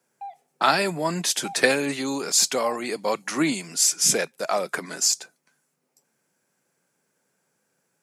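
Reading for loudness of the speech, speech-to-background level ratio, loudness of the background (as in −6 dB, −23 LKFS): −23.0 LKFS, 19.5 dB, −42.5 LKFS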